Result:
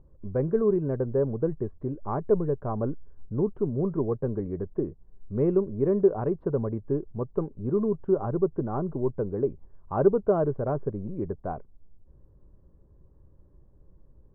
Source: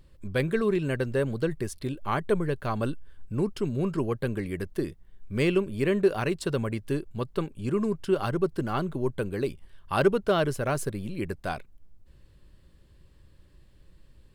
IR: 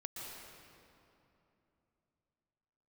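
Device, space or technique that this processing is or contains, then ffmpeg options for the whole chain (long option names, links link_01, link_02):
under water: -af "lowpass=frequency=1000:width=0.5412,lowpass=frequency=1000:width=1.3066,equalizer=frequency=430:width_type=o:width=0.25:gain=4"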